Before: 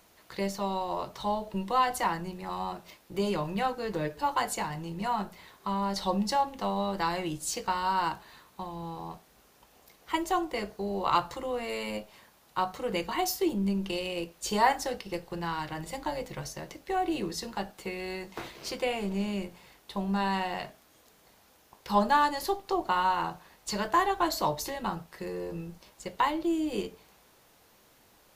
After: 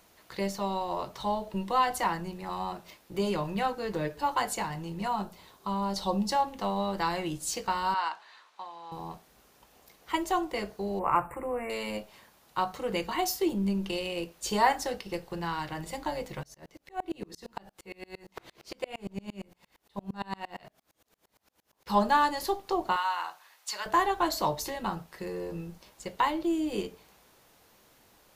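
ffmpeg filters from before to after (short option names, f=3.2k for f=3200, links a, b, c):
-filter_complex "[0:a]asettb=1/sr,asplit=3[a][b][c];[a]atrim=end=5.084[d];[b]atrim=start=5.08:end=6.31,asetpts=PTS-STARTPTS,afade=t=in:d=0.004:c=qsin,afade=t=out:st=1.226:d=0.004:c=qsin,equalizer=f=1.9k:t=o:w=0.76:g=-7.5[e];[c]atrim=start=6.306[f];[d][e]acrossfade=d=0.004:c1=hsin:c2=qsin[g];[g][f]acrossfade=d=0.004:c1=qsin:c2=hsin,asettb=1/sr,asplit=3[h][i][j];[h]atrim=end=7.944[k];[i]atrim=start=7.94:end=8.92,asetpts=PTS-STARTPTS,afade=t=in:d=0.004:c=qsin,afade=t=out:st=0.976:d=0.004:c=qsin,highpass=770,lowpass=5.4k[l];[j]atrim=start=8.916[m];[k][l]acrossfade=d=0.004:c1=hsin:c2=qsin[n];[n][m]acrossfade=d=0.004:c1=qsin:c2=hsin,asettb=1/sr,asplit=3[o][p][q];[o]atrim=end=10.994[r];[p]atrim=start=10.99:end=11.7,asetpts=PTS-STARTPTS,afade=t=in:d=0.004:c=qsin,afade=t=out:st=0.706:d=0.004:c=qsin,asuperstop=centerf=4600:order=20:qfactor=0.9[s];[q]atrim=start=11.696[t];[r][s]acrossfade=d=0.004:c1=hsin:c2=qsin[u];[u][t]acrossfade=d=0.004:c1=qsin:c2=hsin,asettb=1/sr,asplit=3[v][w][x];[v]atrim=end=16.434[y];[w]atrim=start=16.43:end=21.87,asetpts=PTS-STARTPTS,afade=t=in:d=0.004:c=qsin,afade=t=out:st=5.436:d=0.004:c=qsin,aeval=exprs='val(0)*pow(10,-33*if(lt(mod(-8.7*n/s,1),2*abs(-8.7)/1000),1-mod(-8.7*n/s,1)/(2*abs(-8.7)/1000),(mod(-8.7*n/s,1)-2*abs(-8.7)/1000)/(1-2*abs(-8.7)/1000))/20)':c=same[z];[x]atrim=start=21.866[aa];[y][z]acrossfade=d=0.004:c1=hsin:c2=qsin[ab];[ab][aa]acrossfade=d=0.004:c1=qsin:c2=hsin,asettb=1/sr,asplit=3[ac][ad][ae];[ac]atrim=end=22.964[af];[ad]atrim=start=22.96:end=23.86,asetpts=PTS-STARTPTS,afade=t=in:d=0.004:c=qsin,afade=t=out:st=0.896:d=0.004:c=qsin,highpass=1k[ag];[ae]atrim=start=23.856[ah];[af][ag]acrossfade=d=0.004:c1=hsin:c2=qsin[ai];[ai][ah]acrossfade=d=0.004:c1=qsin:c2=hsin"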